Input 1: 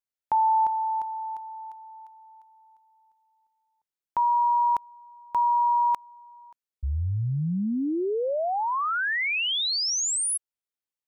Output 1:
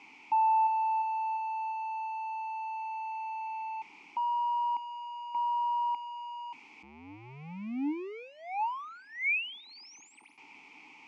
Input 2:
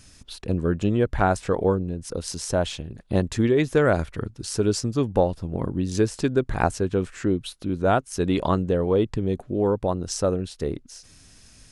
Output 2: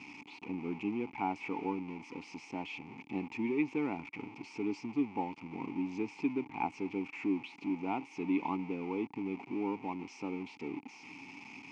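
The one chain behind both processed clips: zero-crossing step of -24.5 dBFS; vowel filter u; speaker cabinet 160–6500 Hz, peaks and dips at 320 Hz -9 dB, 2500 Hz +8 dB, 3800 Hz -8 dB

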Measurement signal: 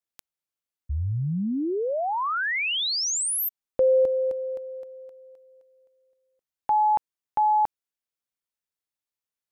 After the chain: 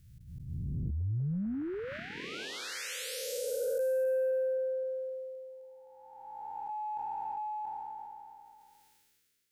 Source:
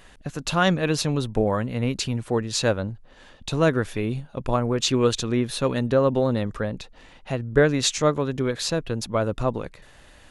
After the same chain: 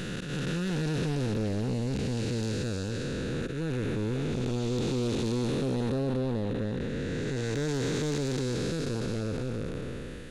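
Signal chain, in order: time blur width 0.934 s; band shelf 830 Hz -13.5 dB 1.2 oct; in parallel at +1.5 dB: compressor, threshold -41 dBFS; on the sum: auto swell 0.123 s; soft clip -24 dBFS; sustainer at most 24 dB/s

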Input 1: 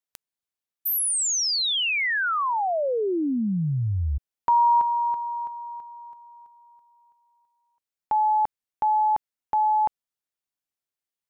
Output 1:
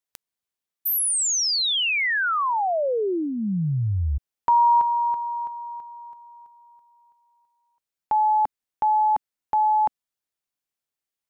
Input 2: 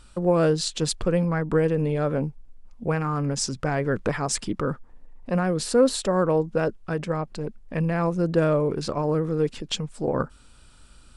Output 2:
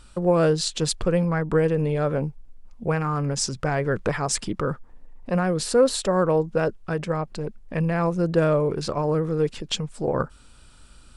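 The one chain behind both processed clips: dynamic EQ 260 Hz, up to -5 dB, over -40 dBFS, Q 2.9; gain +1.5 dB

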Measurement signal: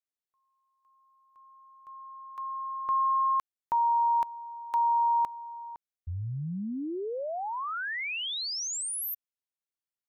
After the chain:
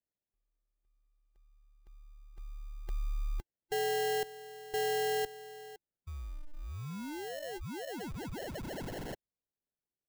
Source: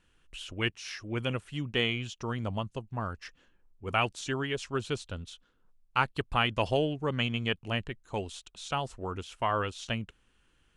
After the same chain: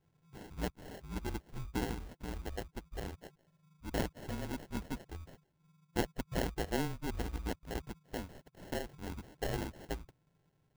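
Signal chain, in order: band-swap scrambler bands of 1000 Hz; sample-rate reducer 1200 Hz, jitter 0%; gain -7 dB

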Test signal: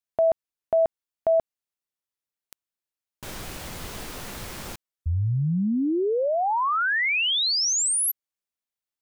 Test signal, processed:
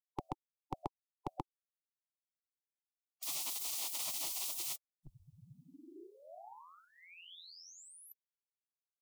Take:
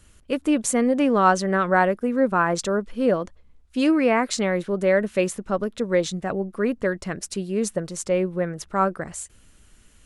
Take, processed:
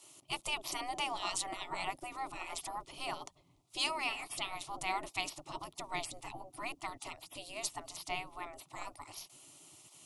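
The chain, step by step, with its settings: spectral gate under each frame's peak -20 dB weak; fixed phaser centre 320 Hz, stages 8; gain +4.5 dB

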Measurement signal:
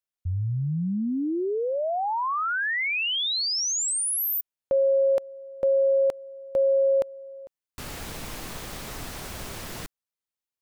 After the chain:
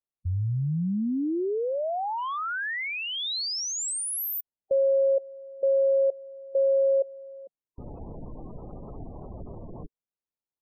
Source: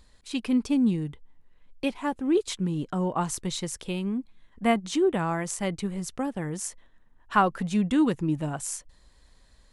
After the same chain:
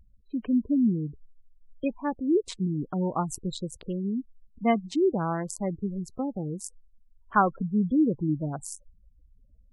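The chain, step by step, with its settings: Wiener smoothing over 25 samples; spectral gate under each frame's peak -20 dB strong

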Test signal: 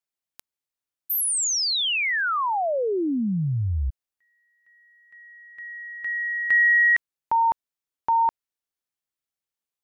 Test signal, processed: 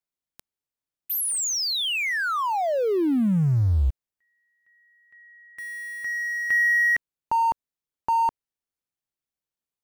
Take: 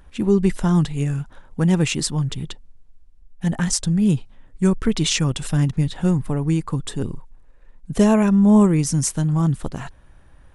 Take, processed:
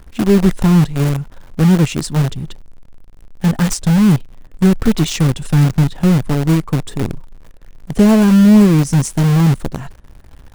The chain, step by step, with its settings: low shelf 490 Hz +7.5 dB; in parallel at -10.5 dB: companded quantiser 2-bit; on the sum: gain -4 dB

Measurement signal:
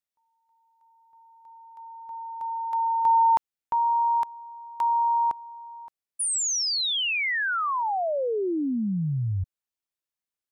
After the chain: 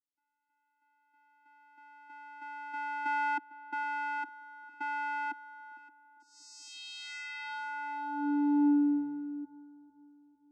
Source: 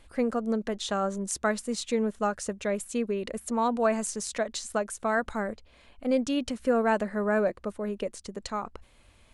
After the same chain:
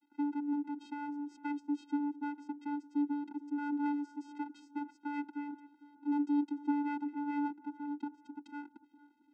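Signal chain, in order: LPF 4900 Hz 12 dB/oct; dynamic EQ 300 Hz, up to +6 dB, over -40 dBFS, Q 1.1; half-wave rectifier; vocoder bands 8, square 290 Hz; darkening echo 0.453 s, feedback 51%, low-pass 1400 Hz, level -17 dB; gain -3.5 dB

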